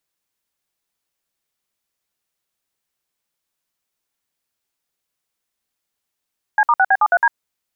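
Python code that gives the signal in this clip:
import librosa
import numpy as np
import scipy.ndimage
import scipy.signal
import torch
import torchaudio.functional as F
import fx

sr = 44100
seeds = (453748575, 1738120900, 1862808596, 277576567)

y = fx.dtmf(sr, digits='C*6B73D', tone_ms=51, gap_ms=57, level_db=-13.0)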